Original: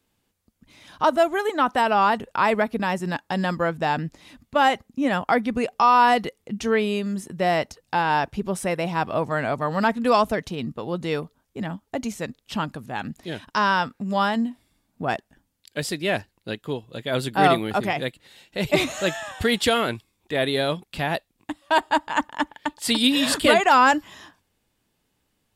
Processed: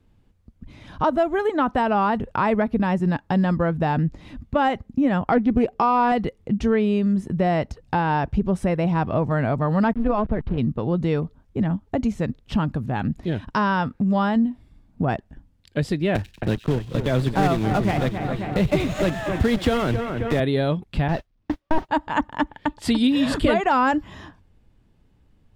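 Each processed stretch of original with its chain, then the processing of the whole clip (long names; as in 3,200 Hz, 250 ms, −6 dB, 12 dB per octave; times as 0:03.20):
0:05.32–0:06.12: parametric band 360 Hz +8 dB 0.79 octaves + highs frequency-modulated by the lows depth 0.13 ms
0:09.93–0:10.58: hold until the input has moved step −34 dBFS + amplitude modulation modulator 220 Hz, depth 35% + high-frequency loss of the air 350 metres
0:16.15–0:20.40: one scale factor per block 3 bits + echo with a time of its own for lows and highs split 2,600 Hz, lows 268 ms, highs 94 ms, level −12 dB + multiband upward and downward compressor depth 40%
0:21.08–0:21.89: linear delta modulator 32 kbit/s, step −31 dBFS + noise gate −32 dBFS, range −46 dB + noise that follows the level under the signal 23 dB
whole clip: RIAA equalisation playback; downward compressor 2 to 1, threshold −25 dBFS; level +3.5 dB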